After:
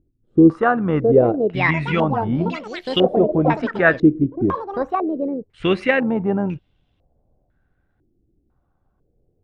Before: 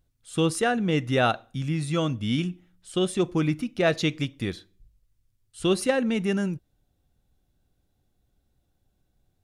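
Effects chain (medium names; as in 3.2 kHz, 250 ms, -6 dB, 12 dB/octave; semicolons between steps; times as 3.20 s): ever faster or slower copies 775 ms, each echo +6 st, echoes 3, each echo -6 dB; AM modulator 84 Hz, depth 20%; step-sequenced low-pass 2 Hz 340–3000 Hz; trim +5.5 dB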